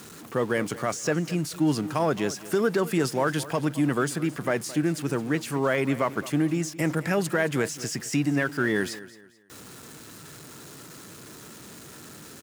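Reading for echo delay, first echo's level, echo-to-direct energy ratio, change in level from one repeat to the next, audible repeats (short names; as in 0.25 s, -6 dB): 0.218 s, -17.0 dB, -16.5 dB, -10.0 dB, 2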